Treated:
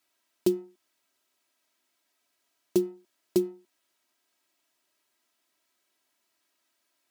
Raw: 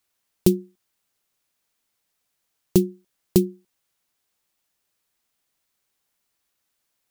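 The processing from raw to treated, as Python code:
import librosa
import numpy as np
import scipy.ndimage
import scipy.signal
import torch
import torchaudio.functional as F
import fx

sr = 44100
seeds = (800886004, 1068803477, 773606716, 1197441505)

y = fx.law_mismatch(x, sr, coded='mu')
y = scipy.signal.sosfilt(scipy.signal.butter(2, 170.0, 'highpass', fs=sr, output='sos'), y)
y = fx.high_shelf(y, sr, hz=7200.0, db=-7.0)
y = y + 0.72 * np.pad(y, (int(3.1 * sr / 1000.0), 0))[:len(y)]
y = F.gain(torch.from_numpy(y), -8.0).numpy()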